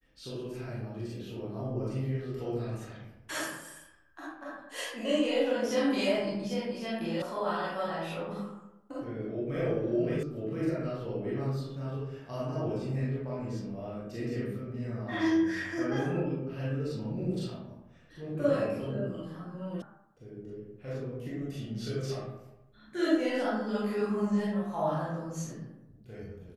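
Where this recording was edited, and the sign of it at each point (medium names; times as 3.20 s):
7.22 s: sound stops dead
10.23 s: sound stops dead
19.82 s: sound stops dead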